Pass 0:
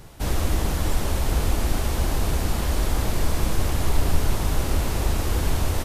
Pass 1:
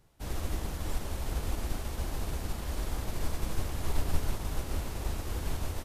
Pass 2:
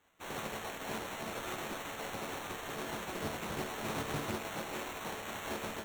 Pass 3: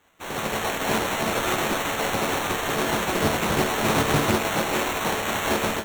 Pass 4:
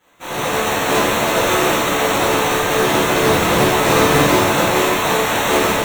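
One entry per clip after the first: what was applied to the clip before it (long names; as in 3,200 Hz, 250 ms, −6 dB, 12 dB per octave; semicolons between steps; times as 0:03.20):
expander for the loud parts 1.5 to 1, over −39 dBFS; level −7 dB
gate on every frequency bin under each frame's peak −20 dB weak; resonators tuned to a chord D2 major, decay 0.27 s; decimation without filtering 9×; level +13.5 dB
automatic gain control gain up to 7 dB; level +9 dB
convolution reverb, pre-delay 3 ms, DRR −9 dB; level −1 dB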